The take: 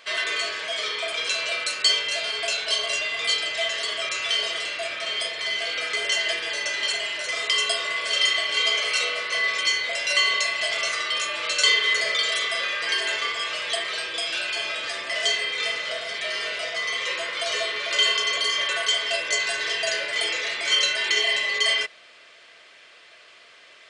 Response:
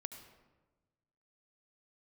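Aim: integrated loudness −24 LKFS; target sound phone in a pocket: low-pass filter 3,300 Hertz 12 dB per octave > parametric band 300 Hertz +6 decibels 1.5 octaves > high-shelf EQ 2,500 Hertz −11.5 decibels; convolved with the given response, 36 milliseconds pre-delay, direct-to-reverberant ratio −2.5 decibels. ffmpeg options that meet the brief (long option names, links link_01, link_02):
-filter_complex "[0:a]asplit=2[link_01][link_02];[1:a]atrim=start_sample=2205,adelay=36[link_03];[link_02][link_03]afir=irnorm=-1:irlink=0,volume=5.5dB[link_04];[link_01][link_04]amix=inputs=2:normalize=0,lowpass=3300,equalizer=frequency=300:width_type=o:width=1.5:gain=6,highshelf=frequency=2500:gain=-11.5,volume=1dB"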